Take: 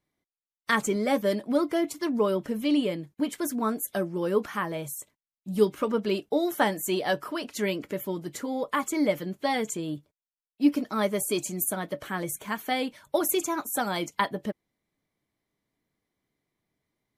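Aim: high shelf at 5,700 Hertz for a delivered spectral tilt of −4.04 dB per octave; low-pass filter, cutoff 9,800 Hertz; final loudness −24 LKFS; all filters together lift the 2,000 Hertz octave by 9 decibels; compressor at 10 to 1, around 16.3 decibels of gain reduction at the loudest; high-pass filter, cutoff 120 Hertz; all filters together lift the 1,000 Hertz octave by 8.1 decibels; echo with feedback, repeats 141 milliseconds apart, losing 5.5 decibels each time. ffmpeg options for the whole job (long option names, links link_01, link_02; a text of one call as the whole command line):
ffmpeg -i in.wav -af "highpass=120,lowpass=9800,equalizer=frequency=1000:width_type=o:gain=8,equalizer=frequency=2000:width_type=o:gain=8.5,highshelf=frequency=5700:gain=-3.5,acompressor=threshold=-28dB:ratio=10,aecho=1:1:141|282|423|564|705|846|987:0.531|0.281|0.149|0.079|0.0419|0.0222|0.0118,volume=8.5dB" out.wav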